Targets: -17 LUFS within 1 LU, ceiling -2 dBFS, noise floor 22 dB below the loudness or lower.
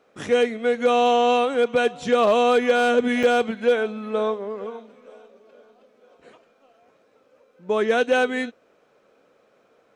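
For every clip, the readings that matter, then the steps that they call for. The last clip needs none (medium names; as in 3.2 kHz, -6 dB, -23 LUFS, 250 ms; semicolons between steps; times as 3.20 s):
clipped samples 0.2%; clipping level -10.5 dBFS; dropouts 1; longest dropout 4.4 ms; loudness -21.0 LUFS; peak level -10.5 dBFS; loudness target -17.0 LUFS
-> clip repair -10.5 dBFS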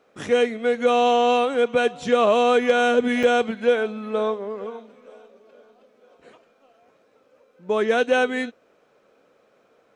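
clipped samples 0.0%; dropouts 1; longest dropout 4.4 ms
-> interpolate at 3.23 s, 4.4 ms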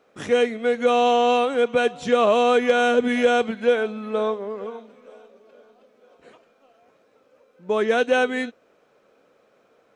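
dropouts 0; loudness -20.5 LUFS; peak level -6.0 dBFS; loudness target -17.0 LUFS
-> trim +3.5 dB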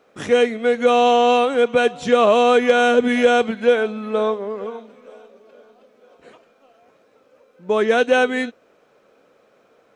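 loudness -17.0 LUFS; peak level -2.5 dBFS; noise floor -58 dBFS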